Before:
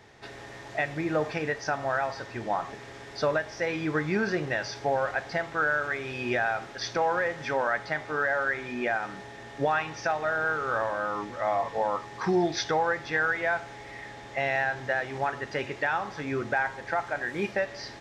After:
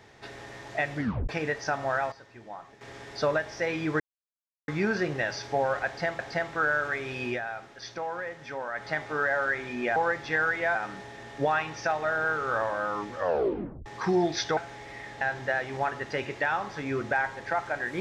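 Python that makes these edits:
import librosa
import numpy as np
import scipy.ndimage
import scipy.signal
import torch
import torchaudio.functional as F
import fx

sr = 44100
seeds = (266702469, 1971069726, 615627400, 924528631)

y = fx.edit(x, sr, fx.tape_stop(start_s=0.97, length_s=0.32),
    fx.fade_down_up(start_s=1.89, length_s=1.15, db=-13.0, fade_s=0.23, curve='log'),
    fx.insert_silence(at_s=4.0, length_s=0.68),
    fx.repeat(start_s=5.18, length_s=0.33, count=2),
    fx.fade_down_up(start_s=6.24, length_s=1.64, db=-8.0, fade_s=0.16),
    fx.tape_stop(start_s=11.36, length_s=0.7),
    fx.move(start_s=12.77, length_s=0.79, to_s=8.95),
    fx.cut(start_s=14.2, length_s=0.42), tone=tone)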